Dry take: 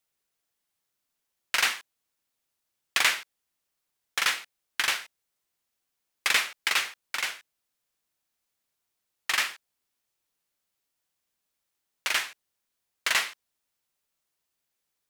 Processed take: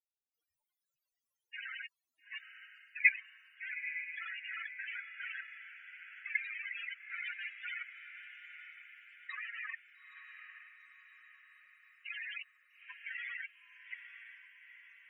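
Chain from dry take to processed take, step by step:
delay that plays each chunk backwards 340 ms, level −0.5 dB
0:07.16–0:09.35: comb filter 6.3 ms, depth 59%
output level in coarse steps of 20 dB
spectral peaks only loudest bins 8
on a send: feedback delay with all-pass diffusion 882 ms, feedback 52%, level −9.5 dB
on the sum: level +5.5 dB

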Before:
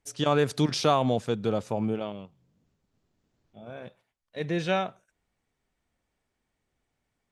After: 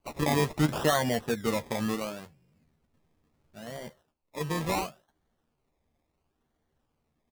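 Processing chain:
spectral magnitudes quantised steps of 15 dB
notch filter 1,500 Hz
in parallel at +1 dB: downward compressor, threshold −40 dBFS, peak gain reduction 20 dB
on the sum: sample-and-hold swept by an LFO 24×, swing 60% 0.72 Hz
double-tracking delay 13 ms −7.5 dB
level −4 dB

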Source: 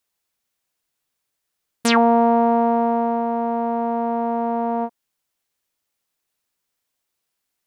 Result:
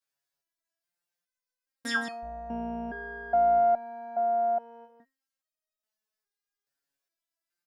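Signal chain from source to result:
0:02.22–0:03.59: sub-octave generator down 2 octaves, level −1 dB
thirty-one-band graphic EQ 630 Hz +6 dB, 1,600 Hz +9 dB, 5,000 Hz +5 dB
single-tap delay 160 ms −10 dB
step-sequenced resonator 2.4 Hz 140–630 Hz

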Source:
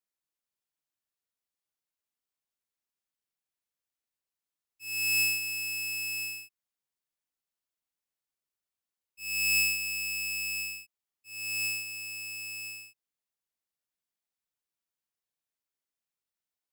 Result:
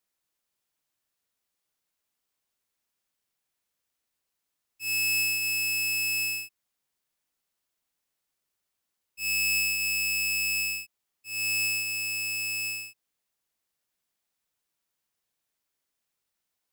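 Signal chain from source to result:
downward compressor 4 to 1, threshold −34 dBFS, peak gain reduction 9.5 dB
level +8.5 dB

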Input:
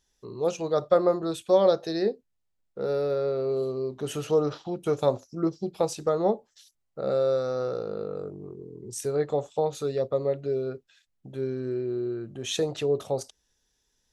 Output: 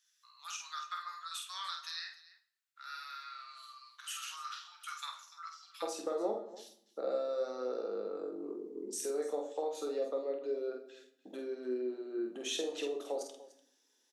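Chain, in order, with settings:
Butterworth high-pass 1,200 Hz 48 dB per octave, from 0:05.82 240 Hz
downward compressor 2.5 to 1, threshold −38 dBFS, peak gain reduction 12.5 dB
multi-tap delay 48/294 ms −4.5/−17.5 dB
convolution reverb RT60 0.70 s, pre-delay 6 ms, DRR 6.5 dB
level −1.5 dB

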